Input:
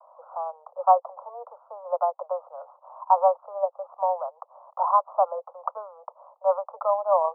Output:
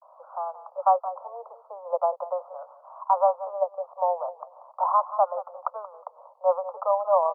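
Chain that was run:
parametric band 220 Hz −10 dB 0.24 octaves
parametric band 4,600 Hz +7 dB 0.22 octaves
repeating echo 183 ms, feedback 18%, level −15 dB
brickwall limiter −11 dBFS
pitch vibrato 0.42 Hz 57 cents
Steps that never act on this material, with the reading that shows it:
parametric band 220 Hz: nothing at its input below 450 Hz
parametric band 4,600 Hz: nothing at its input above 1,400 Hz

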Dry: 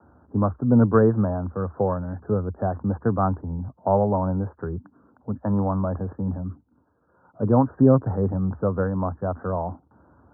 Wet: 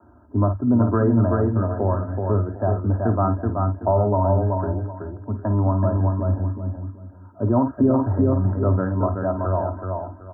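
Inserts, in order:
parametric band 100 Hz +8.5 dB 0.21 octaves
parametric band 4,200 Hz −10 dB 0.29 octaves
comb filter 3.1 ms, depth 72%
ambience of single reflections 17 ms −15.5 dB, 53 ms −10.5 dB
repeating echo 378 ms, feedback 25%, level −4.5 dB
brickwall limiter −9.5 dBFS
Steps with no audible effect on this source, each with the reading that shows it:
parametric band 4,200 Hz: nothing at its input above 1,000 Hz

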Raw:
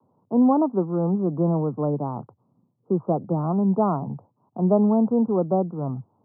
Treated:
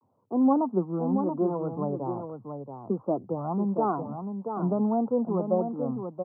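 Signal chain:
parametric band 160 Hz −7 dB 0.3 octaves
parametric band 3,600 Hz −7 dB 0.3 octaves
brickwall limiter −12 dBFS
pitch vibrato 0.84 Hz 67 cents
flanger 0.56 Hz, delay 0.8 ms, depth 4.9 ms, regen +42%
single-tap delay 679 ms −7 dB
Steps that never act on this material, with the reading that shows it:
parametric band 3,600 Hz: nothing at its input above 1,300 Hz

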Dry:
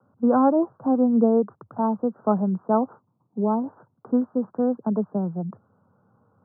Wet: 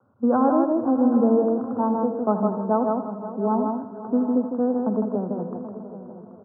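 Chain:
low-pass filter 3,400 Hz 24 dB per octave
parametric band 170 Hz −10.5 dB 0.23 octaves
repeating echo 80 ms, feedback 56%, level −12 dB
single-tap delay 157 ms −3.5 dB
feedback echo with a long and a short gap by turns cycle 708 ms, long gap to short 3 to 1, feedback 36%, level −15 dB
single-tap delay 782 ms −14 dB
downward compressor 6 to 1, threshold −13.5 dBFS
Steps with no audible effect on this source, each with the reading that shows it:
low-pass filter 3,400 Hz: nothing at its input above 1,400 Hz

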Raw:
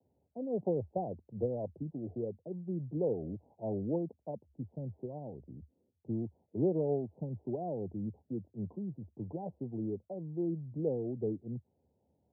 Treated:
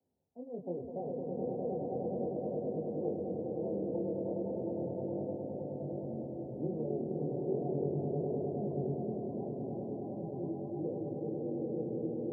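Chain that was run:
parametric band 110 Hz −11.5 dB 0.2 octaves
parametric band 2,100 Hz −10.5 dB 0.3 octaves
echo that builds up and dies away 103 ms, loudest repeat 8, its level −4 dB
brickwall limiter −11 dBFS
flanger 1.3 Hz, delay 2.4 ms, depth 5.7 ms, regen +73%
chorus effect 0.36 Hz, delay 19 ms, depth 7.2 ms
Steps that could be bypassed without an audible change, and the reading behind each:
parametric band 2,100 Hz: nothing at its input above 910 Hz
brickwall limiter −11 dBFS: peak of its input −15.0 dBFS

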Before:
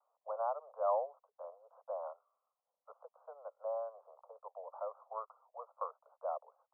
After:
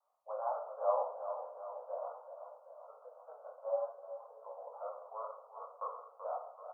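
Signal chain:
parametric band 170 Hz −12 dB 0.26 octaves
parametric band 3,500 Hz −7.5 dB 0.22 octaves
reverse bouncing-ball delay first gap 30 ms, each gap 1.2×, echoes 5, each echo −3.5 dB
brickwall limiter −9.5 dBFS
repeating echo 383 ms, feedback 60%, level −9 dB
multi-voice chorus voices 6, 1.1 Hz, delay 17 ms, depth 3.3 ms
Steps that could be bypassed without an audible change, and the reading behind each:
parametric band 170 Hz: nothing at its input below 430 Hz
parametric band 3,500 Hz: nothing at its input above 1,400 Hz
brickwall limiter −9.5 dBFS: peak of its input −18.0 dBFS

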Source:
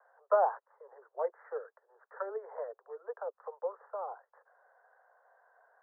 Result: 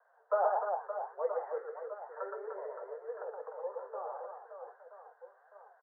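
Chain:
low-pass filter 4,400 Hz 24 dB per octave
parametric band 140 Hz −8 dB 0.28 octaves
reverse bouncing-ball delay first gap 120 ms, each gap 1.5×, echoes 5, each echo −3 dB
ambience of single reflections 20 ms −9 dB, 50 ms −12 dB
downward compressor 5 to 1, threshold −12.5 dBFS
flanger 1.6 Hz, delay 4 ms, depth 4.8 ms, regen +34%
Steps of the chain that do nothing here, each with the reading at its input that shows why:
low-pass filter 4,400 Hz: nothing at its input above 1,800 Hz
parametric band 140 Hz: nothing at its input below 360 Hz
downward compressor, threshold −12.5 dBFS: peak of its input −14.0 dBFS

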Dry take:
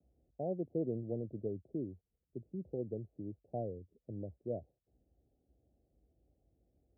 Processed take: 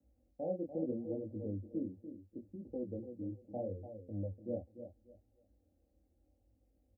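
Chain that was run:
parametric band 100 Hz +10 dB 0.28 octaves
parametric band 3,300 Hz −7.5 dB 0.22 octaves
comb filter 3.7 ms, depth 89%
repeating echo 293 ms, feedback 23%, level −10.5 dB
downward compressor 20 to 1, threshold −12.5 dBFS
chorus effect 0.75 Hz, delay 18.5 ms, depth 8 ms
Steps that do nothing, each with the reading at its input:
parametric band 3,300 Hz: nothing at its input above 760 Hz
downward compressor, threshold −12.5 dBFS: peak of its input −21.0 dBFS

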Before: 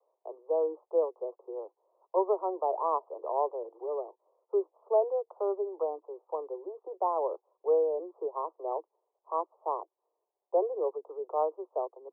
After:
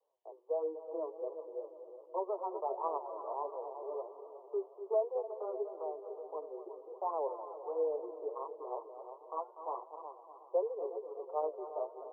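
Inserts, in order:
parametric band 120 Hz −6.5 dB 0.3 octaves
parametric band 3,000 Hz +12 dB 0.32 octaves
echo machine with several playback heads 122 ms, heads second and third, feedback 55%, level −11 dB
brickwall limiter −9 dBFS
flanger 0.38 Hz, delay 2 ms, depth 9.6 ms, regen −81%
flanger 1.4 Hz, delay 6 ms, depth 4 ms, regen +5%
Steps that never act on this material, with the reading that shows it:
parametric band 120 Hz: nothing at its input below 290 Hz
parametric band 3,000 Hz: nothing at its input above 1,200 Hz
brickwall limiter −9 dBFS: peak of its input −14.5 dBFS

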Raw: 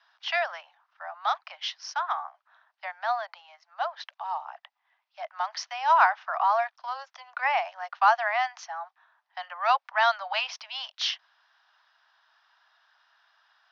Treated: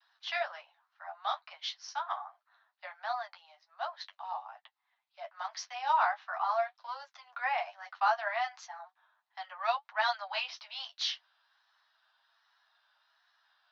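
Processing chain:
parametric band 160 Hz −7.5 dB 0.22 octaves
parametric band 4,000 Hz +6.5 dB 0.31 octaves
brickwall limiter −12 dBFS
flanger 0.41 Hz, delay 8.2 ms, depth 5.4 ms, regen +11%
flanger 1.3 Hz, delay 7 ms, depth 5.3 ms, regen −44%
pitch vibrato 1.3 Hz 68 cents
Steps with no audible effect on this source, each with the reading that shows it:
parametric band 160 Hz: nothing at its input below 510 Hz

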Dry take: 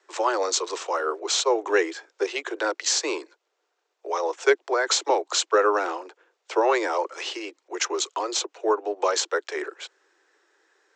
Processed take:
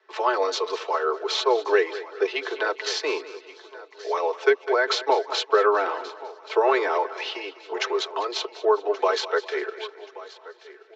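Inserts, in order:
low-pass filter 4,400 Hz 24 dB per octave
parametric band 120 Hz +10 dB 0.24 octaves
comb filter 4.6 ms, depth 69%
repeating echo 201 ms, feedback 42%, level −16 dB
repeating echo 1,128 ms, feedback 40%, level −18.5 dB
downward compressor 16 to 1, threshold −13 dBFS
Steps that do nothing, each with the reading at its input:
parametric band 120 Hz: nothing at its input below 270 Hz

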